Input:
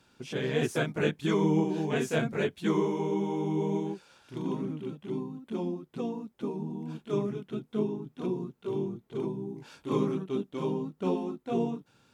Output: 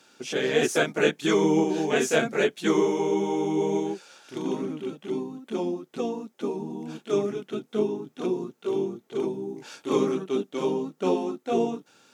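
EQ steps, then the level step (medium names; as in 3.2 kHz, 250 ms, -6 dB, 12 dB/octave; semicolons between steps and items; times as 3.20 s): high-pass 300 Hz 12 dB/octave; peaking EQ 6.4 kHz +5.5 dB 0.62 oct; band-stop 1 kHz, Q 9; +7.5 dB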